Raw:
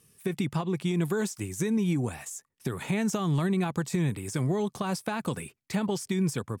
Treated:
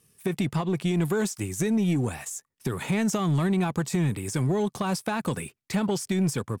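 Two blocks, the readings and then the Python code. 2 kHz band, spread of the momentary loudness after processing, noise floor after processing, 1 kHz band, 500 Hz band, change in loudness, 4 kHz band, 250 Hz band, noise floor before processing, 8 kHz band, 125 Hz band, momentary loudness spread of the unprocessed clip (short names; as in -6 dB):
+2.5 dB, 8 LU, -76 dBFS, +3.0 dB, +2.5 dB, +2.5 dB, +3.0 dB, +2.5 dB, -74 dBFS, +3.5 dB, +2.5 dB, 8 LU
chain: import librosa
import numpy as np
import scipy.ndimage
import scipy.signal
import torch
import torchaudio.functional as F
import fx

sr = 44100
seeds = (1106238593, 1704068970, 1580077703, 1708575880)

y = fx.leveller(x, sr, passes=1)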